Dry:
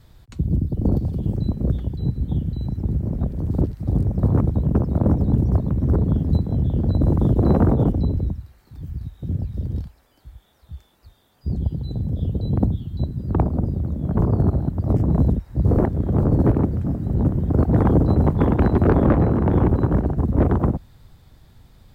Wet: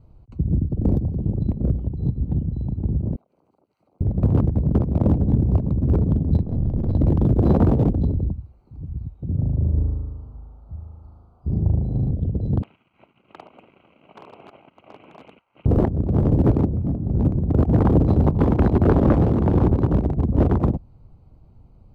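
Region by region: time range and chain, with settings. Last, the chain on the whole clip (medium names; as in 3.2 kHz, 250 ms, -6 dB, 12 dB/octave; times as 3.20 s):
3.16–4.01 s: high-pass 1.5 kHz + compression 16:1, threshold -56 dBFS
6.42–6.95 s: partial rectifier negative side -7 dB + doubling 42 ms -13 dB
9.34–12.11 s: resonant high shelf 1.6 kHz -7 dB, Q 3 + flutter echo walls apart 6.5 m, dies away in 1.4 s
12.62–15.66 s: CVSD coder 16 kbps + high-pass 1.5 kHz + waveshaping leveller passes 1
whole clip: local Wiener filter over 25 samples; dynamic bell 1.9 kHz, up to -3 dB, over -47 dBFS, Q 1.3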